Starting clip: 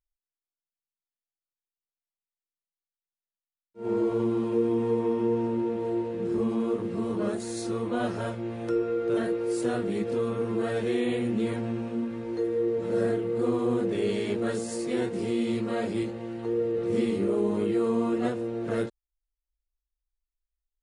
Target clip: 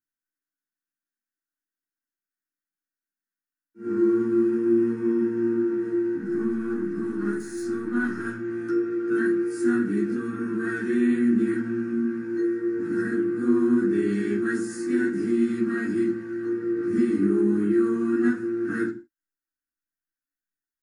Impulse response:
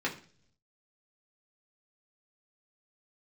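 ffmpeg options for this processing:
-filter_complex "[0:a]asettb=1/sr,asplit=3[a][b][c];[a]atrim=end=6.164[d];[b]atrim=start=6.16:end=8.25,asetpts=PTS-STARTPTS,afade=t=in:d=0.004:c=qsin,afade=t=out:st=2.086:d=0.004:c=qsin,aeval=exprs='if(lt(val(0),0),0.447*val(0),val(0))':c=same[e];[c]atrim=start=8.246[f];[d][e]acrossfade=d=0.004:c1=hsin:c2=qsin[g];[g][f]acrossfade=d=0.004:c1=qsin:c2=hsin,firequalizer=gain_entry='entry(120,0);entry(320,11);entry(510,-20);entry(1500,13);entry(2300,-3);entry(3600,-8);entry(5200,6);entry(10000,14)':delay=0.05:min_phase=1[h];[1:a]atrim=start_sample=2205,afade=t=out:st=0.23:d=0.01,atrim=end_sample=10584[i];[h][i]afir=irnorm=-1:irlink=0,volume=-8.5dB"

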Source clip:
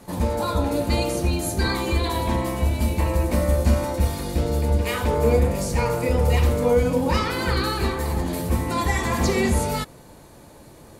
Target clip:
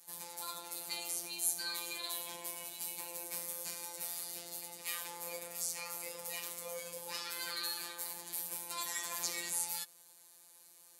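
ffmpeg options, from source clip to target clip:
-af "highpass=56,afftfilt=real='hypot(re,im)*cos(PI*b)':imag='0':win_size=1024:overlap=0.75,aderivative,volume=-1dB"

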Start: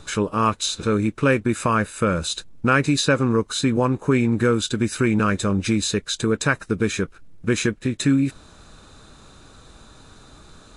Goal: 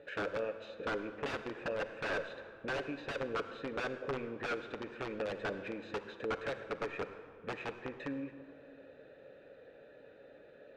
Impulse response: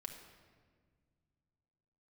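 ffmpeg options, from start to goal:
-filter_complex "[0:a]acompressor=threshold=-31dB:ratio=2.5,asplit=3[a][b][c];[a]bandpass=f=530:t=q:w=8,volume=0dB[d];[b]bandpass=f=1.84k:t=q:w=8,volume=-6dB[e];[c]bandpass=f=2.48k:t=q:w=8,volume=-9dB[f];[d][e][f]amix=inputs=3:normalize=0,aeval=exprs='(mod(63.1*val(0)+1,2)-1)/63.1':c=same,adynamicsmooth=sensitivity=1.5:basefreq=1.9k,asplit=2[g][h];[1:a]atrim=start_sample=2205,asetrate=29547,aresample=44100,lowshelf=f=260:g=-7.5[i];[h][i]afir=irnorm=-1:irlink=0,volume=4dB[j];[g][j]amix=inputs=2:normalize=0,volume=2.5dB"

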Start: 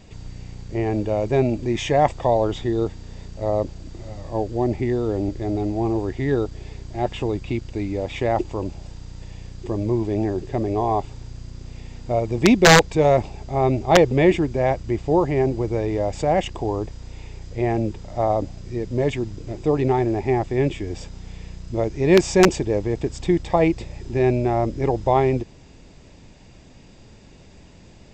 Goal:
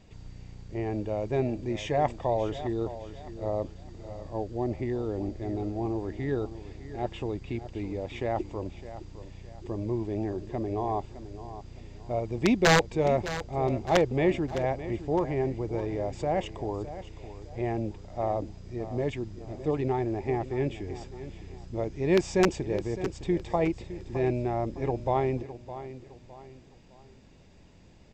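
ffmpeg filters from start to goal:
-filter_complex "[0:a]highshelf=f=6.2k:g=-5.5,asplit=2[a][b];[b]aecho=0:1:611|1222|1833:0.211|0.0761|0.0274[c];[a][c]amix=inputs=2:normalize=0,volume=-8.5dB"

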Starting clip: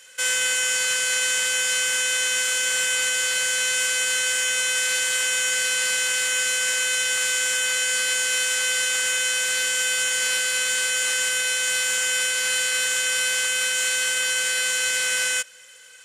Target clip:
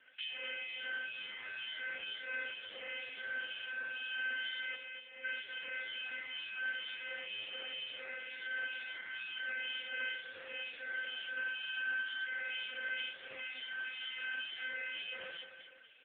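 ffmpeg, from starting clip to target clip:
-filter_complex "[0:a]asettb=1/sr,asplit=3[a][b][c];[a]atrim=end=7.084[d];[b]atrim=start=7.08:end=8,asetpts=PTS-STARTPTS,afade=t=in:d=0.004:c=qsin,afade=t=out:st=0.916:d=0.004:c=qsin,highpass=f=42:p=1[e];[c]atrim=start=7.996[f];[d][e]acrossfade=d=0.004:c1=hsin:c2=qsin[g];[g][f]acrossfade=d=0.004:c1=qsin:c2=hsin,lowshelf=f=78:g=6,asettb=1/sr,asplit=3[h][i][j];[h]atrim=end=11.364[k];[i]atrim=start=11.36:end=12.24,asetpts=PTS-STARTPTS,afade=t=in:d=0.004:c=qsin,afade=t=out:st=0.876:d=0.004:c=qsin,aecho=1:1:6.6:0.81,atrim=end_sample=38808[l];[j]atrim=start=12.236[m];[k][l]acrossfade=d=0.004:c1=hsin:c2=qsin[n];[n][m]acrossfade=d=0.004:c1=qsin:c2=hsin,acrossover=split=230[o][p];[p]acompressor=threshold=-26dB:ratio=8[q];[o][q]amix=inputs=2:normalize=0,flanger=delay=16:depth=2.4:speed=0.13,asplit=3[r][s][t];[r]afade=t=out:st=4.74:d=0.02[u];[s]asplit=3[v][w][x];[v]bandpass=f=530:t=q:w=8,volume=0dB[y];[w]bandpass=f=1.84k:t=q:w=8,volume=-6dB[z];[x]bandpass=f=2.48k:t=q:w=8,volume=-9dB[aa];[y][z][aa]amix=inputs=3:normalize=0,afade=t=in:st=4.74:d=0.02,afade=t=out:st=5.23:d=0.02[ab];[t]afade=t=in:st=5.23:d=0.02[ac];[u][ab][ac]amix=inputs=3:normalize=0,acrossover=split=2400[ad][ae];[ad]aeval=exprs='val(0)*(1-1/2+1/2*cos(2*PI*2.1*n/s))':c=same[af];[ae]aeval=exprs='val(0)*(1-1/2-1/2*cos(2*PI*2.1*n/s))':c=same[ag];[af][ag]amix=inputs=2:normalize=0,afreqshift=17,aecho=1:1:245|490|735|980:0.355|0.135|0.0512|0.0195" -ar 8000 -c:a libopencore_amrnb -b:a 5150

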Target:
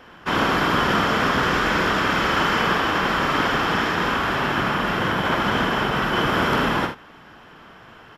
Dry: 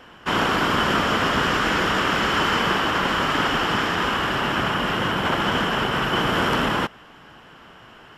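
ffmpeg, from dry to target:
-filter_complex "[0:a]equalizer=f=8.1k:t=o:w=0.52:g=-5.5,bandreject=f=2.9k:w=12,asplit=2[a][b];[b]aecho=0:1:48|77:0.447|0.266[c];[a][c]amix=inputs=2:normalize=0"

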